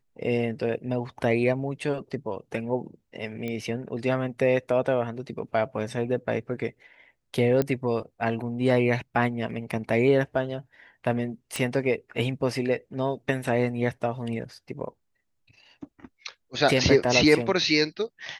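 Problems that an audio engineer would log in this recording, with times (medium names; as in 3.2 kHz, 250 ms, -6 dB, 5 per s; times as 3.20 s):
3.48 s: pop -20 dBFS
7.62 s: pop -13 dBFS
11.56 s: pop -13 dBFS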